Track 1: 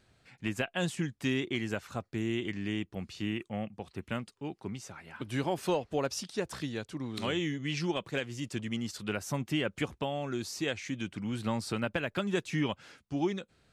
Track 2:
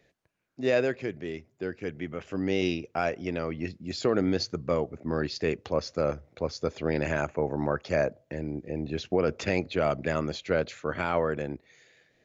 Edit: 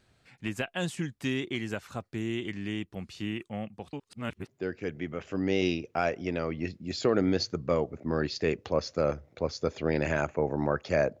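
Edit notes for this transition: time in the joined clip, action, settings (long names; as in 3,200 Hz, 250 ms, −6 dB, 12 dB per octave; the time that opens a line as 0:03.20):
track 1
0:03.93–0:04.48: reverse
0:04.48: continue with track 2 from 0:01.48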